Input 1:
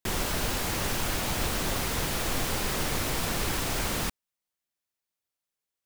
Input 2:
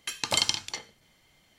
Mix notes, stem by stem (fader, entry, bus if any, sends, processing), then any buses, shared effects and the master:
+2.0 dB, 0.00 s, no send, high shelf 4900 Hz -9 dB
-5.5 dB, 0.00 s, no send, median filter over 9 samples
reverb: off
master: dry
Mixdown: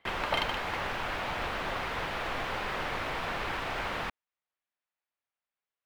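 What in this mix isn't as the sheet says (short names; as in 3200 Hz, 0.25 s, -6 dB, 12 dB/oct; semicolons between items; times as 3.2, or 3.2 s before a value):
stem 2 -5.5 dB -> +2.5 dB; master: extra three-band isolator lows -12 dB, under 540 Hz, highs -19 dB, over 3500 Hz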